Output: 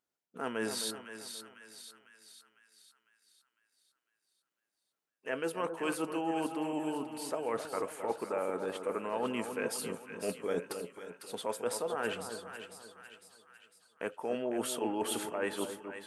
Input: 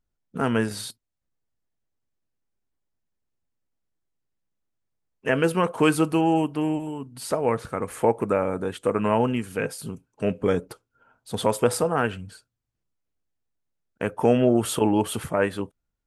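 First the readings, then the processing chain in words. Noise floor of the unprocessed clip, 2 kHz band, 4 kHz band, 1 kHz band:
−81 dBFS, −9.0 dB, −6.0 dB, −10.5 dB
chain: high-pass filter 330 Hz 12 dB per octave
reversed playback
downward compressor 6 to 1, threshold −32 dBFS, peak gain reduction 16 dB
reversed playback
echo with a time of its own for lows and highs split 1,300 Hz, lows 265 ms, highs 502 ms, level −8 dB

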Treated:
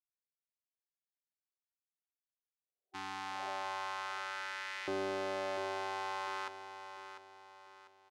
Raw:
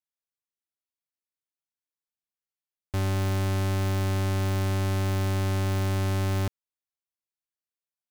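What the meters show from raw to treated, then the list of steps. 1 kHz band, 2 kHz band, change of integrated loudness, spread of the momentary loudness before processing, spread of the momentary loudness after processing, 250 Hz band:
−2.0 dB, −3.0 dB, −12.5 dB, 2 LU, 17 LU, −17.0 dB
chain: downward expander −15 dBFS
low-pass filter 5,300 Hz 12 dB per octave
auto-filter high-pass saw up 0.41 Hz 370–2,000 Hz
healed spectral selection 0:02.52–0:03.46, 370–770 Hz both
on a send: repeating echo 697 ms, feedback 39%, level −10 dB
on the sum: level +14 dB

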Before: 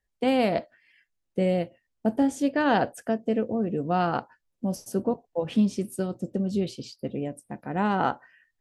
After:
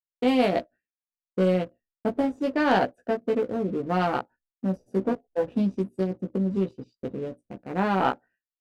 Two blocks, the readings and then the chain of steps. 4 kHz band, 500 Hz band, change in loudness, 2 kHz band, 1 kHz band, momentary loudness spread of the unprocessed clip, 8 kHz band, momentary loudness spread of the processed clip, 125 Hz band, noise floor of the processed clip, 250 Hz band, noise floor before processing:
+0.5 dB, +1.5 dB, +0.5 dB, +1.0 dB, +0.5 dB, 10 LU, below −10 dB, 13 LU, +0.5 dB, below −85 dBFS, −0.5 dB, −79 dBFS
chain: adaptive Wiener filter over 41 samples
double-tracking delay 16 ms −3.5 dB
downward expander −50 dBFS
parametric band 130 Hz −7 dB 1 octave
leveller curve on the samples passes 1
level −2 dB

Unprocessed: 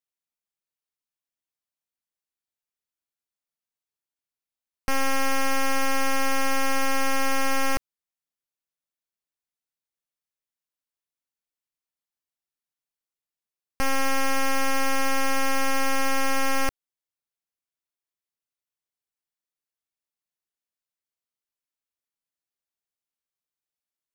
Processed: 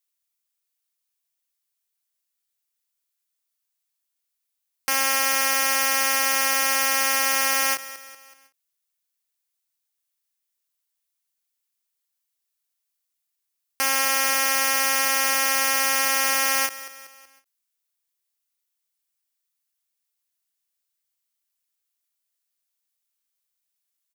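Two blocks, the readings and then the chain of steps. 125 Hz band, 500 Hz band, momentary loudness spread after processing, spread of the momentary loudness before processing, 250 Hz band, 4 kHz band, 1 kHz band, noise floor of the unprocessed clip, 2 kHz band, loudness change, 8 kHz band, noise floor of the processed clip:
below −25 dB, −2.0 dB, 6 LU, 3 LU, −9.5 dB, +8.0 dB, +1.0 dB, below −85 dBFS, +5.0 dB, +6.0 dB, +10.5 dB, −80 dBFS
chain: high-pass filter 390 Hz 6 dB per octave
spectral tilt +3 dB per octave
on a send: repeating echo 188 ms, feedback 50%, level −16.5 dB
on the sum: every ending faded ahead of time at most 300 dB per second
level +2 dB

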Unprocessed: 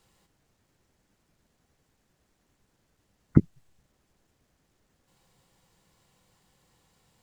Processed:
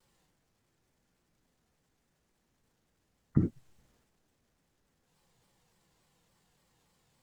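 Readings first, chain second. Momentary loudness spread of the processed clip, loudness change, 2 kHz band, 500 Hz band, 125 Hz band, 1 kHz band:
4 LU, −7.5 dB, can't be measured, −7.0 dB, −6.0 dB, −6.5 dB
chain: reverb whose tail is shaped and stops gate 120 ms falling, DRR 9 dB
transient designer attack −4 dB, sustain +6 dB
pitch modulation by a square or saw wave saw down 3.5 Hz, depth 160 cents
level −5.5 dB

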